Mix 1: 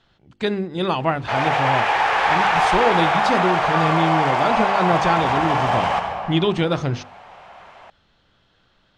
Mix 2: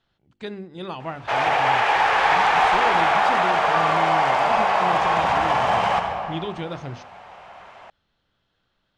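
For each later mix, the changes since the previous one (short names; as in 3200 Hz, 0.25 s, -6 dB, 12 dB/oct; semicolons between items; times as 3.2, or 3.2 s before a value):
speech -11.0 dB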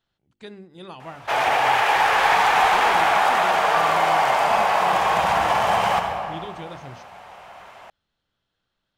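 speech -7.0 dB; master: remove air absorption 77 m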